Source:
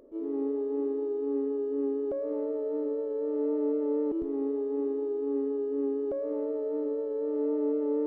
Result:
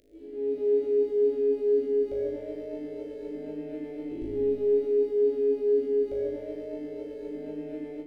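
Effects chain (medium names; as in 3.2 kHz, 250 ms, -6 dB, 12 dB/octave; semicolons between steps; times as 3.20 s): self-modulated delay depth 0.053 ms; static phaser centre 440 Hz, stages 4; filtered feedback delay 87 ms, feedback 57%, low-pass 1 kHz, level -4 dB; peak limiter -28 dBFS, peak gain reduction 9 dB; high-order bell 660 Hz -14.5 dB 2.4 oct; on a send: flutter echo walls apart 3.3 m, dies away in 1.1 s; on the sum: level rider gain up to 10 dB; trim +2 dB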